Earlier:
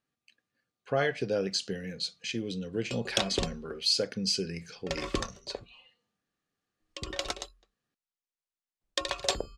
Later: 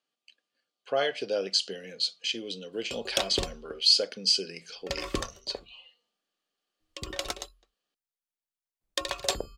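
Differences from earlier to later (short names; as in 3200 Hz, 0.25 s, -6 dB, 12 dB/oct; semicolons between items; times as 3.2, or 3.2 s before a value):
speech: add speaker cabinet 340–9300 Hz, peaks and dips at 610 Hz +4 dB, 1800 Hz -4 dB, 3100 Hz +9 dB, 4600 Hz +6 dB; master: remove LPF 8200 Hz 12 dB/oct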